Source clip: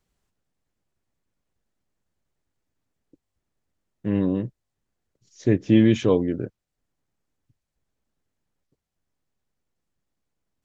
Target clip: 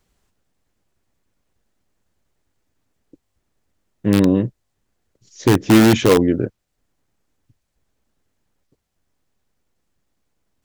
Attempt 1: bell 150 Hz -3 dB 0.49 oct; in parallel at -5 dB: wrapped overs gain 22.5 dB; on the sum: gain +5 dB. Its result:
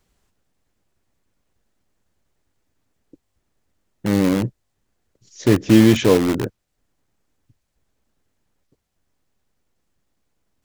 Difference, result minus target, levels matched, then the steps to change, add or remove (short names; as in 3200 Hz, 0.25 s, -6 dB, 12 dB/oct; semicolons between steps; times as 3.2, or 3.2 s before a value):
wrapped overs: distortion +10 dB
change: wrapped overs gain 13 dB